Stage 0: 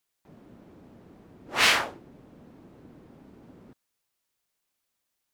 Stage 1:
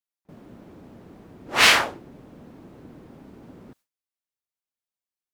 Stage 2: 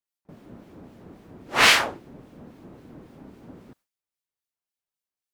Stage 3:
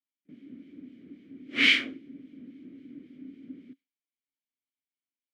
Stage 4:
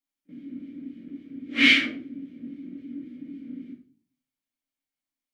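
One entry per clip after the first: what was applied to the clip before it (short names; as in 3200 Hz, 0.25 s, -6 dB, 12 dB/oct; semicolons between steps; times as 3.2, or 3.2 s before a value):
gate with hold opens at -48 dBFS; gain +5.5 dB
harmonic tremolo 3.7 Hz, depth 50%, crossover 1900 Hz; gain +2 dB
vowel filter i; gain +7 dB
reverb RT60 0.40 s, pre-delay 4 ms, DRR -1.5 dB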